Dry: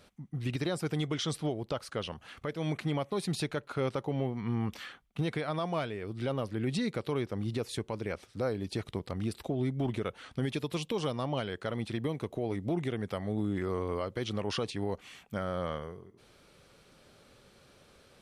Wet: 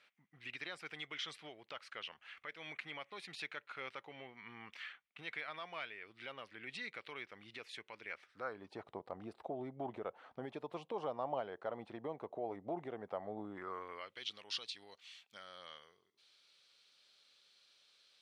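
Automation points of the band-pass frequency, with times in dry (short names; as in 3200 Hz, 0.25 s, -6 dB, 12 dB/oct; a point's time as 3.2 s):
band-pass, Q 2
8.1 s 2200 Hz
8.87 s 770 Hz
13.42 s 770 Hz
14.35 s 4000 Hz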